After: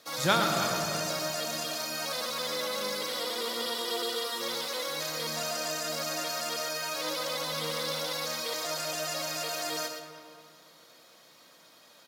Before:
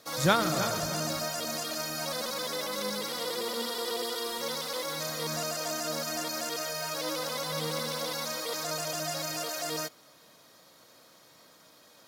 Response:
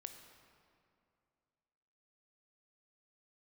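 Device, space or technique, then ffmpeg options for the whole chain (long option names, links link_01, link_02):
PA in a hall: -filter_complex "[0:a]highpass=frequency=170:poles=1,equalizer=frequency=2900:width_type=o:width=1.5:gain=4,aecho=1:1:117:0.398[link_01];[1:a]atrim=start_sample=2205[link_02];[link_01][link_02]afir=irnorm=-1:irlink=0,volume=3.5dB"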